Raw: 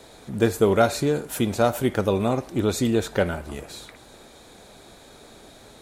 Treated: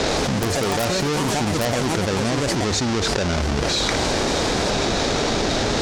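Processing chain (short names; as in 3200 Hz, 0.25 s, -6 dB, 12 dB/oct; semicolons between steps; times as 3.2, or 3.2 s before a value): half-waves squared off; ladder low-pass 6900 Hz, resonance 40%; echoes that change speed 82 ms, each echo +4 st, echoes 3, each echo -6 dB; wrapped overs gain 12 dB; fast leveller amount 100%; gain -3.5 dB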